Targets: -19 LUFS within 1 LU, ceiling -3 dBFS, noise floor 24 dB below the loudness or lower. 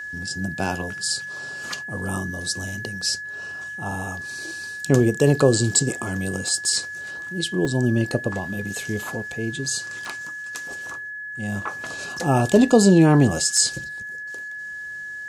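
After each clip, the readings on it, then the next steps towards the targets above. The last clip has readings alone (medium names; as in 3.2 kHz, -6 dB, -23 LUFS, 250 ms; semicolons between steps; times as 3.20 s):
dropouts 3; longest dropout 2.4 ms; steady tone 1.7 kHz; tone level -31 dBFS; loudness -23.0 LUFS; peak level -3.0 dBFS; loudness target -19.0 LUFS
-> interpolate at 7.65/10.05/13.57 s, 2.4 ms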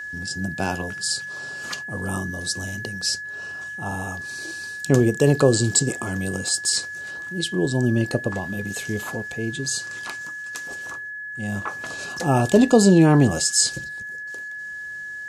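dropouts 0; steady tone 1.7 kHz; tone level -31 dBFS
-> band-stop 1.7 kHz, Q 30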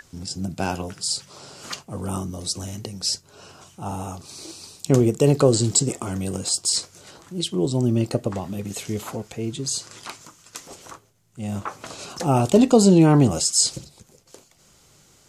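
steady tone not found; loudness -22.0 LUFS; peak level -3.5 dBFS; loudness target -19.0 LUFS
-> trim +3 dB; peak limiter -3 dBFS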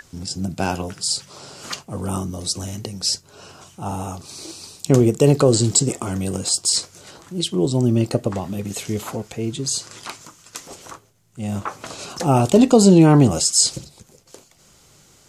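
loudness -19.0 LUFS; peak level -3.0 dBFS; noise floor -53 dBFS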